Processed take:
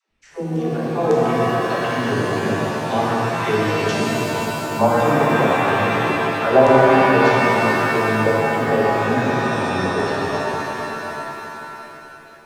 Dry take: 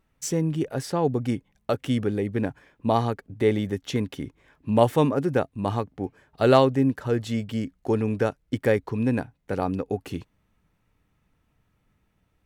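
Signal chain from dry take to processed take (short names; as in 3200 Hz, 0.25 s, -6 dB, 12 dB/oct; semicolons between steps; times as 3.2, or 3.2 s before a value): dispersion lows, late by 0.114 s, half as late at 370 Hz; LFO low-pass saw down 1.8 Hz 470–6800 Hz; shimmer reverb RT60 3.4 s, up +7 st, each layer -2 dB, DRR -4.5 dB; gain -3.5 dB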